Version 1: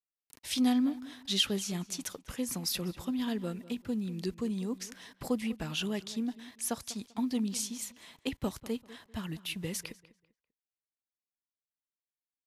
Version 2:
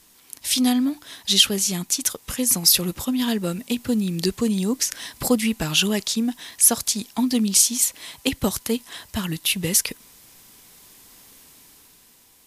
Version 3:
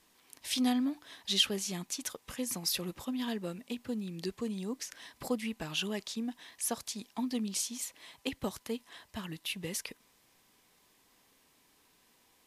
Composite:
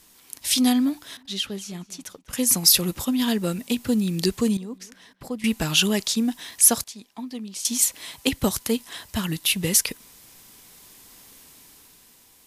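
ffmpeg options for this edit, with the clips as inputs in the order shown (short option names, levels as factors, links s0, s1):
-filter_complex "[0:a]asplit=2[s0][s1];[1:a]asplit=4[s2][s3][s4][s5];[s2]atrim=end=1.172[s6];[s0]atrim=start=1.168:end=2.332[s7];[s3]atrim=start=2.328:end=4.572[s8];[s1]atrim=start=4.568:end=5.442[s9];[s4]atrim=start=5.438:end=6.842[s10];[2:a]atrim=start=6.838:end=7.652[s11];[s5]atrim=start=7.648[s12];[s6][s7]acrossfade=d=0.004:c1=hsin:c2=hsin[s13];[s13][s8]acrossfade=d=0.004:c1=hsin:c2=hsin[s14];[s14][s9]acrossfade=d=0.004:c1=hsin:c2=hsin[s15];[s15][s10]acrossfade=d=0.004:c1=hsin:c2=hsin[s16];[s16][s11]acrossfade=d=0.004:c1=hsin:c2=hsin[s17];[s17][s12]acrossfade=d=0.004:c1=hsin:c2=hsin"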